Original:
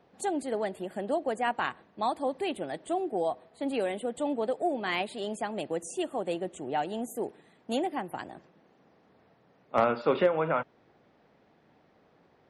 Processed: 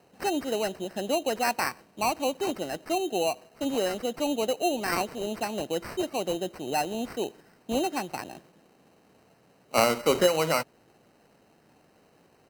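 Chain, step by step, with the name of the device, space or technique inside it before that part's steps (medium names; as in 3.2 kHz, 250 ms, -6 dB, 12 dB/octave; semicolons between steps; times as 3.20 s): crushed at another speed (playback speed 0.8×; sample-and-hold 16×; playback speed 1.25×); trim +2.5 dB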